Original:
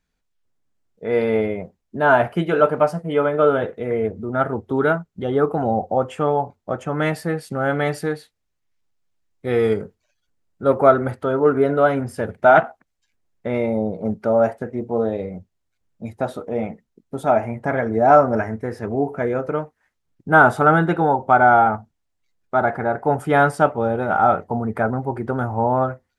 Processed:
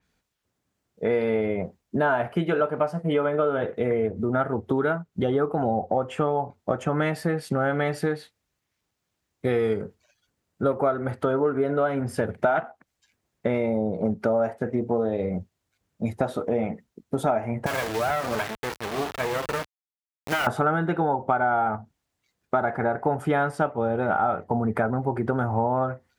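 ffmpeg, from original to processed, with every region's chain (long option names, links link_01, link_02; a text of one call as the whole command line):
ffmpeg -i in.wav -filter_complex "[0:a]asettb=1/sr,asplit=3[link_01][link_02][link_03];[link_01]atrim=end=17.664[link_04];[link_02]atrim=start=17.66:end=20.47,asetpts=PTS-STARTPTS,afade=type=in:duration=0.004:curve=qsin,afade=type=out:start_time=2.806:duration=0.004:curve=qsin,highpass=frequency=710:poles=1,acompressor=threshold=-21dB:ratio=3:attack=3.2:release=140:knee=1:detection=peak,acrusher=bits=3:dc=4:mix=0:aa=0.000001[link_05];[link_03]atrim=start=20.466[link_06];[link_04][link_05]acrossfade=duration=0.004:curve1=hsin:curve2=qsin[link_07];[link_07][link_06]acrossfade=duration=0.004:curve1=qsin:curve2=hsin,highpass=57,acompressor=threshold=-27dB:ratio=6,adynamicequalizer=threshold=0.00224:dfrequency=4900:dqfactor=0.7:tfrequency=4900:tqfactor=0.7:attack=5:release=100:ratio=0.375:range=3:mode=cutabove:tftype=highshelf,volume=6dB" out.wav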